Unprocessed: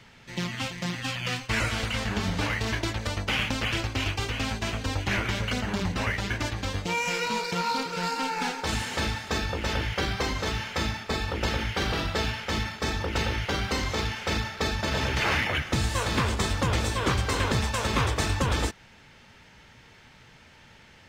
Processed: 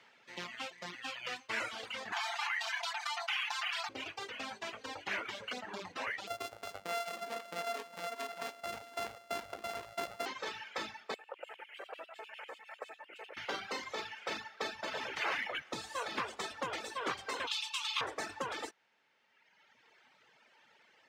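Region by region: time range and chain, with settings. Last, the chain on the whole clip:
0:02.12–0:03.89: linear-phase brick-wall high-pass 670 Hz + comb filter 5.8 ms, depth 61% + envelope flattener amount 70%
0:06.27–0:10.26: samples sorted by size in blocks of 64 samples + low-shelf EQ 81 Hz +9.5 dB
0:11.14–0:13.37: flat-topped bell 4,600 Hz −15.5 dB 1.1 octaves + downward compressor 8 to 1, threshold −32 dBFS + auto-filter high-pass square 10 Hz 540–3,300 Hz
0:17.47–0:18.01: Chebyshev high-pass with heavy ripple 840 Hz, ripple 6 dB + high shelf with overshoot 2,200 Hz +8.5 dB, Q 1.5
whole clip: high-pass filter 440 Hz 12 dB per octave; high-shelf EQ 5,200 Hz −9.5 dB; reverb reduction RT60 1.9 s; level −6 dB

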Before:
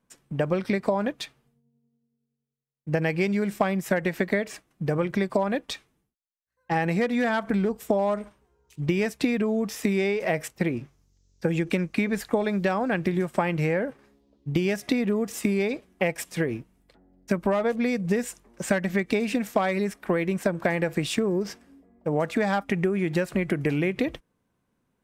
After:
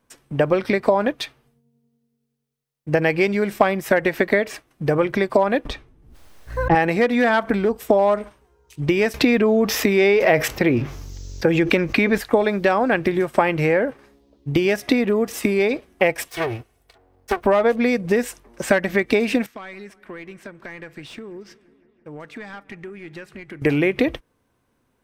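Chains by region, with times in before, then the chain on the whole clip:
0:05.65–0:06.75: spectral tilt −3.5 dB per octave + background raised ahead of every attack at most 57 dB per second
0:09.14–0:12.18: parametric band 9,200 Hz −9 dB 0.44 octaves + envelope flattener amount 50%
0:16.28–0:17.44: lower of the sound and its delayed copy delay 2.7 ms + high-pass filter 66 Hz + parametric band 300 Hz −11.5 dB 0.51 octaves
0:19.46–0:23.62: guitar amp tone stack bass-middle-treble 6-0-2 + mid-hump overdrive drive 19 dB, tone 1,000 Hz, clips at −26.5 dBFS + delay with a low-pass on its return 167 ms, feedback 73%, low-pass 1,800 Hz, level −21 dB
whole clip: parametric band 180 Hz −9.5 dB 0.52 octaves; notch filter 7,100 Hz, Q 19; dynamic equaliser 8,200 Hz, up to −5 dB, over −54 dBFS, Q 0.83; level +8 dB

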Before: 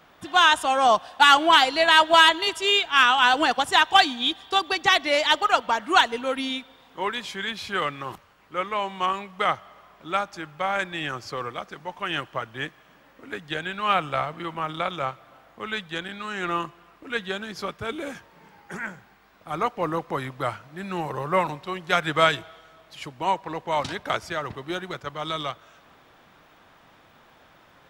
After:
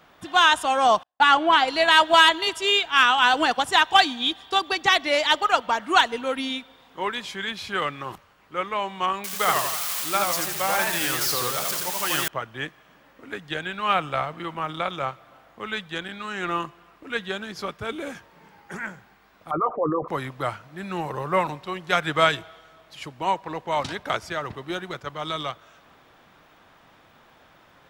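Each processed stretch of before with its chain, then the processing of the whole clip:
0:01.03–0:01.68: low-pass filter 2,100 Hz 6 dB per octave + noise gate −38 dBFS, range −43 dB
0:09.24–0:12.28: spike at every zero crossing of −18.5 dBFS + feedback echo with a swinging delay time 82 ms, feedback 50%, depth 199 cents, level −3 dB
0:19.51–0:20.08: spectral envelope exaggerated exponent 3 + double-tracking delay 13 ms −10.5 dB + envelope flattener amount 50%
whole clip: no processing

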